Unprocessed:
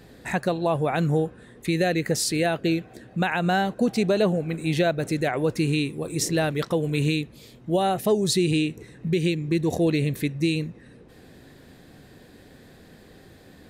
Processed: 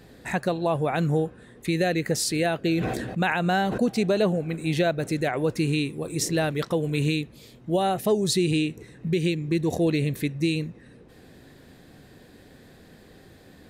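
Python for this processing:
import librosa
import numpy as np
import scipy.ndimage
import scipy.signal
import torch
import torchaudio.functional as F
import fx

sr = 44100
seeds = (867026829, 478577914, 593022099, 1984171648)

y = fx.sustainer(x, sr, db_per_s=33.0, at=(2.68, 3.79), fade=0.02)
y = y * 10.0 ** (-1.0 / 20.0)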